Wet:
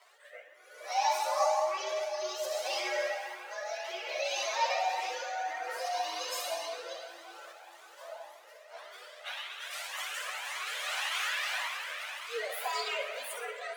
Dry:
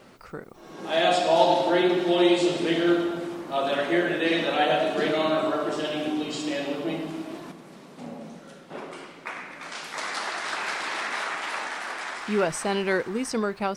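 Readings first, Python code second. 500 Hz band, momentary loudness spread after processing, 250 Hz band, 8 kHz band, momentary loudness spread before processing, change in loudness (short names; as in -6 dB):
-11.0 dB, 19 LU, -34.0 dB, -1.0 dB, 19 LU, -8.5 dB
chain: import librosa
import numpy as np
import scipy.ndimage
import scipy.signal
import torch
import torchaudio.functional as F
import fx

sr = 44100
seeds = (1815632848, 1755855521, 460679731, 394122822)

p1 = fx.partial_stretch(x, sr, pct=119)
p2 = fx.spec_repair(p1, sr, seeds[0], start_s=5.86, length_s=0.74, low_hz=940.0, high_hz=5000.0, source='after')
p3 = scipy.signal.sosfilt(scipy.signal.ellip(4, 1.0, 70, 560.0, 'highpass', fs=sr, output='sos'), p2)
p4 = fx.over_compress(p3, sr, threshold_db=-35.0, ratio=-0.5)
p5 = p3 + F.gain(torch.from_numpy(p4), -3.0).numpy()
p6 = fx.rotary(p5, sr, hz=0.6)
p7 = p6 + fx.echo_wet_highpass(p6, sr, ms=62, feedback_pct=43, hz=1600.0, wet_db=-7, dry=0)
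p8 = fx.rev_spring(p7, sr, rt60_s=2.9, pass_ms=(53, 58), chirp_ms=55, drr_db=5.5)
y = fx.comb_cascade(p8, sr, direction='rising', hz=1.8)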